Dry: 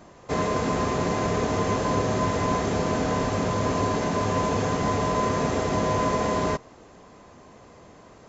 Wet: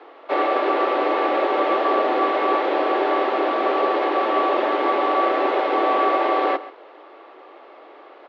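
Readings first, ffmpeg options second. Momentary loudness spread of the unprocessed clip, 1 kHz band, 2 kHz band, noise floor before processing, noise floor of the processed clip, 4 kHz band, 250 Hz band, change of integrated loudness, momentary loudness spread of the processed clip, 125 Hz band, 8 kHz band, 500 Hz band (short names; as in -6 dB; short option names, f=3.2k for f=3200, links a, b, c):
1 LU, +7.0 dB, +6.0 dB, -50 dBFS, -46 dBFS, +3.0 dB, 0.0 dB, +5.0 dB, 2 LU, under -35 dB, n/a, +5.5 dB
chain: -af "aecho=1:1:133:0.15,highpass=f=190:t=q:w=0.5412,highpass=f=190:t=q:w=1.307,lowpass=f=3.6k:t=q:w=0.5176,lowpass=f=3.6k:t=q:w=0.7071,lowpass=f=3.6k:t=q:w=1.932,afreqshift=130,volume=5.5dB"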